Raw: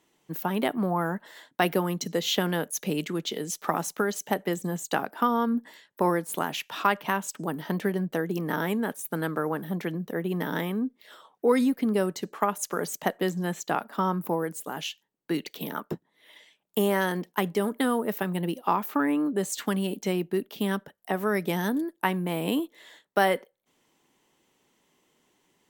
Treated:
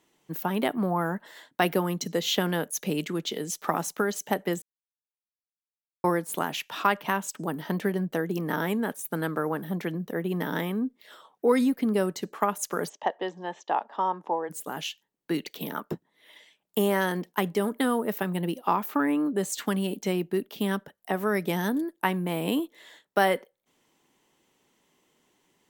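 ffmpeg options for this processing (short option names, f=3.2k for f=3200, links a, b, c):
-filter_complex "[0:a]asplit=3[a][b][c];[a]afade=t=out:st=12.88:d=0.02[d];[b]highpass=450,equalizer=f=870:t=q:w=4:g=7,equalizer=f=1.4k:t=q:w=4:g=-9,equalizer=f=2.3k:t=q:w=4:g=-8,equalizer=f=4.3k:t=q:w=4:g=-10,lowpass=f=4.6k:w=0.5412,lowpass=f=4.6k:w=1.3066,afade=t=in:st=12.88:d=0.02,afade=t=out:st=14.49:d=0.02[e];[c]afade=t=in:st=14.49:d=0.02[f];[d][e][f]amix=inputs=3:normalize=0,asplit=3[g][h][i];[g]atrim=end=4.62,asetpts=PTS-STARTPTS,afade=t=out:st=4.616:d=0.004:c=hsin[j];[h]atrim=start=4.62:end=6.04,asetpts=PTS-STARTPTS,volume=0[k];[i]atrim=start=6.04,asetpts=PTS-STARTPTS,afade=t=in:d=0.004:c=hsin[l];[j][k][l]concat=n=3:v=0:a=1"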